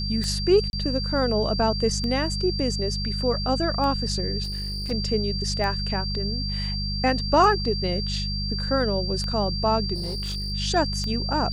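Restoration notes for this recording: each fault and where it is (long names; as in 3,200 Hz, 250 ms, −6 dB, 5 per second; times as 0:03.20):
mains hum 50 Hz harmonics 4 −29 dBFS
scratch tick 33 1/3 rpm −18 dBFS
whistle 4,700 Hz −30 dBFS
0:00.70–0:00.73: drop-out 31 ms
0:04.43–0:04.92: clipping −27 dBFS
0:09.94–0:10.53: clipping −26 dBFS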